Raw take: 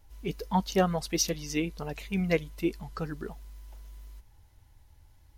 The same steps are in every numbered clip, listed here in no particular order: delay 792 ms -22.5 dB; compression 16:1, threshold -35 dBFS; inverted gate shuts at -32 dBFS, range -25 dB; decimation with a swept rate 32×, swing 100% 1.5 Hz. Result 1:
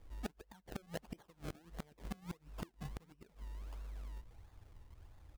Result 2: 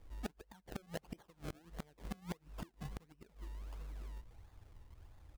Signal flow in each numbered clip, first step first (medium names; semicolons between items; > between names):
decimation with a swept rate > compression > inverted gate > delay; decimation with a swept rate > compression > delay > inverted gate